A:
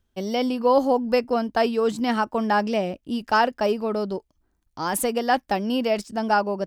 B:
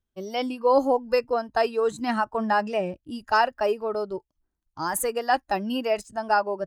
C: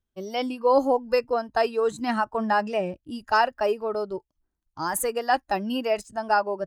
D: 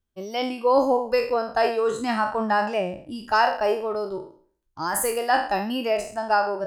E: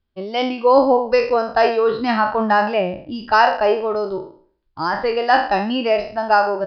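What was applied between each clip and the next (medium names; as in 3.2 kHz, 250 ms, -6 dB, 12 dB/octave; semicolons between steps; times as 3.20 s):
spectral noise reduction 11 dB; trim -1 dB
no audible change
spectral sustain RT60 0.49 s
resampled via 11.025 kHz; trim +6 dB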